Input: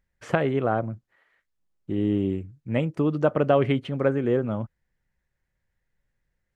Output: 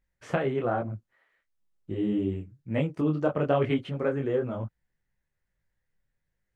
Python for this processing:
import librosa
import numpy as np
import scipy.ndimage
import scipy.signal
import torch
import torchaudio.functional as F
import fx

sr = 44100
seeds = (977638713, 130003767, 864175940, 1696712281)

y = fx.detune_double(x, sr, cents=37)